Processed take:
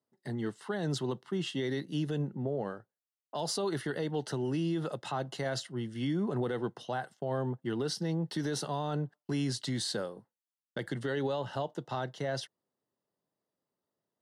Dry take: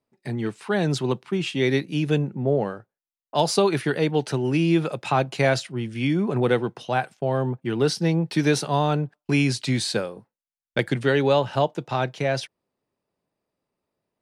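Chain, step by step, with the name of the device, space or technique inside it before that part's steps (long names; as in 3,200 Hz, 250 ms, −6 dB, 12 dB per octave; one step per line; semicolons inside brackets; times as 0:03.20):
PA system with an anti-feedback notch (high-pass filter 100 Hz 12 dB per octave; Butterworth band-reject 2,400 Hz, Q 4; brickwall limiter −17.5 dBFS, peak gain reduction 9.5 dB)
level −7 dB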